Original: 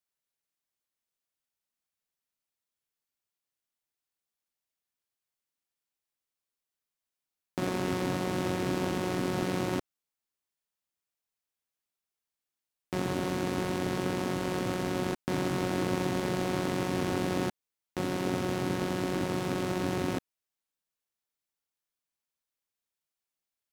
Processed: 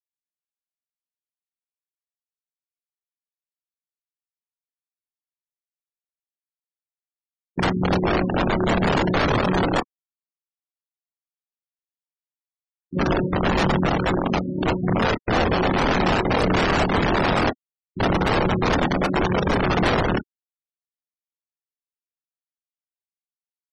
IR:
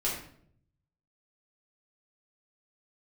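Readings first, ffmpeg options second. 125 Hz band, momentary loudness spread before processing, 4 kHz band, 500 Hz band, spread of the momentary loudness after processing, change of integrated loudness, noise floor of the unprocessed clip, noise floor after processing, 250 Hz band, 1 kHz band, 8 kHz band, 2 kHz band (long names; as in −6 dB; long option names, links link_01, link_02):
+10.5 dB, 4 LU, +11.0 dB, +9.5 dB, 5 LU, +10.5 dB, below −85 dBFS, below −85 dBFS, +8.5 dB, +13.0 dB, +0.5 dB, +13.0 dB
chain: -filter_complex "[0:a]asubboost=boost=10.5:cutoff=220,agate=range=-12dB:threshold=-18dB:ratio=16:detection=peak,highpass=120,lowpass=3100,equalizer=frequency=860:width_type=o:width=1.7:gain=8.5,asplit=2[link_01][link_02];[link_02]acrusher=samples=31:mix=1:aa=0.000001:lfo=1:lforange=18.6:lforate=0.97,volume=-9.5dB[link_03];[link_01][link_03]amix=inputs=2:normalize=0,aphaser=in_gain=1:out_gain=1:delay=3.9:decay=0.41:speed=0.66:type=sinusoidal,aeval=exprs='(mod(5.31*val(0)+1,2)-1)/5.31':channel_layout=same,asplit=2[link_04][link_05];[link_05]adelay=27,volume=-8.5dB[link_06];[link_04][link_06]amix=inputs=2:normalize=0,asplit=2[link_07][link_08];[link_08]adelay=76,lowpass=frequency=1600:poles=1,volume=-22dB,asplit=2[link_09][link_10];[link_10]adelay=76,lowpass=frequency=1600:poles=1,volume=0.42,asplit=2[link_11][link_12];[link_12]adelay=76,lowpass=frequency=1600:poles=1,volume=0.42[link_13];[link_09][link_11][link_13]amix=inputs=3:normalize=0[link_14];[link_07][link_14]amix=inputs=2:normalize=0,afftfilt=real='re*gte(hypot(re,im),0.0708)':imag='im*gte(hypot(re,im),0.0708)':win_size=1024:overlap=0.75"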